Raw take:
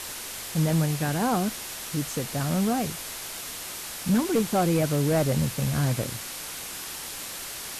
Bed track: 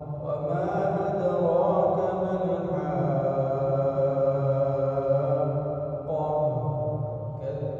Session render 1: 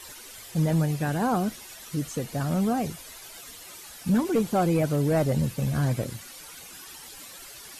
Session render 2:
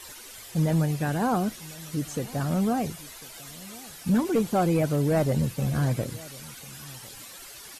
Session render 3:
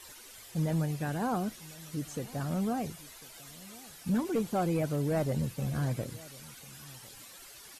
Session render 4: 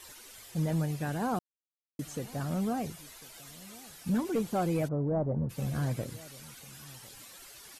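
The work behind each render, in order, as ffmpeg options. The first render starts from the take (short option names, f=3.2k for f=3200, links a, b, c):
-af "afftdn=nr=12:nf=-37"
-filter_complex "[0:a]asplit=2[a][b];[b]adelay=1050,volume=-21dB,highshelf=f=4k:g=-23.6[c];[a][c]amix=inputs=2:normalize=0"
-af "volume=-6.5dB"
-filter_complex "[0:a]asplit=3[a][b][c];[a]afade=t=out:st=4.87:d=0.02[d];[b]lowpass=f=1.1k:w=0.5412,lowpass=f=1.1k:w=1.3066,afade=t=in:st=4.87:d=0.02,afade=t=out:st=5.49:d=0.02[e];[c]afade=t=in:st=5.49:d=0.02[f];[d][e][f]amix=inputs=3:normalize=0,asplit=3[g][h][i];[g]atrim=end=1.39,asetpts=PTS-STARTPTS,afade=t=out:st=1.386:d=0.004:c=hsin[j];[h]atrim=start=1.39:end=1.99,asetpts=PTS-STARTPTS,volume=0[k];[i]atrim=start=1.99,asetpts=PTS-STARTPTS,afade=t=in:d=0.004:c=hsin[l];[j][k][l]concat=n=3:v=0:a=1"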